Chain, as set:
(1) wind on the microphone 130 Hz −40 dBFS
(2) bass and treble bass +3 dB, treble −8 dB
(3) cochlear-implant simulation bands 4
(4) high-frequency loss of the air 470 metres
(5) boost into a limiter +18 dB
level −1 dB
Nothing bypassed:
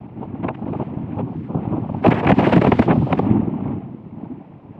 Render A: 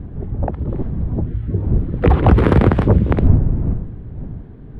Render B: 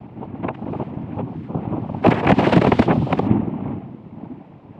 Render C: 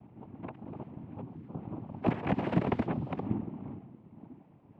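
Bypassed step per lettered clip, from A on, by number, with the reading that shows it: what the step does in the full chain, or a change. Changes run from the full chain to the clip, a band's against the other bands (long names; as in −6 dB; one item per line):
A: 3, 125 Hz band +8.0 dB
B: 2, change in momentary loudness spread +2 LU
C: 5, change in crest factor +5.0 dB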